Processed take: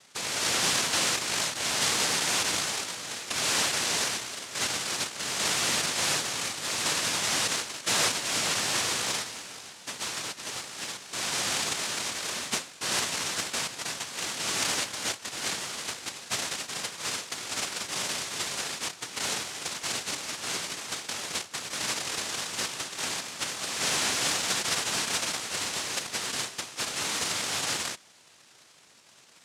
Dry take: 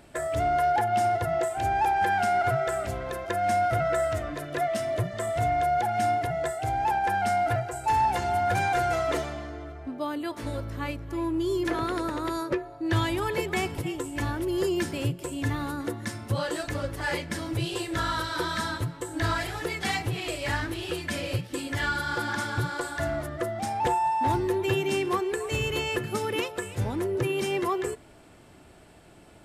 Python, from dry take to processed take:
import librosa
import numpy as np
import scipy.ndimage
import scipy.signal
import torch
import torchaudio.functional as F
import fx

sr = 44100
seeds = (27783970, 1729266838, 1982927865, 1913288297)

y = fx.noise_vocoder(x, sr, seeds[0], bands=1)
y = y * 10.0 ** (-3.0 / 20.0)